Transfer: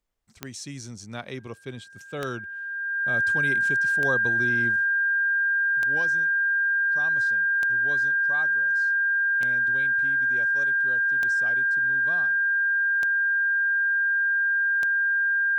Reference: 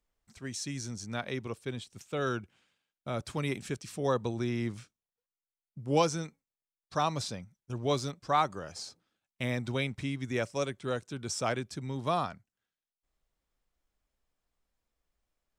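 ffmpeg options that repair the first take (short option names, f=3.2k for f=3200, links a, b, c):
-af "adeclick=t=4,bandreject=f=1.6k:w=30,asetnsamples=n=441:p=0,asendcmd='4.76 volume volume 11.5dB',volume=0dB"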